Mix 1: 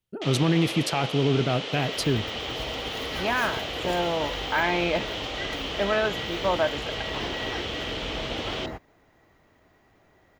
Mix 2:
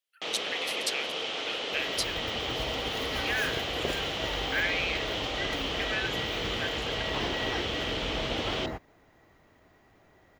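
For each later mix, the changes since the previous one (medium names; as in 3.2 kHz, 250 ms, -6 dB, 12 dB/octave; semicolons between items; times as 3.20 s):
speech: add steep high-pass 1.6 kHz 48 dB/octave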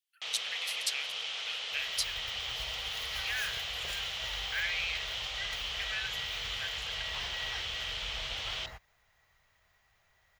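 master: add amplifier tone stack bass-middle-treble 10-0-10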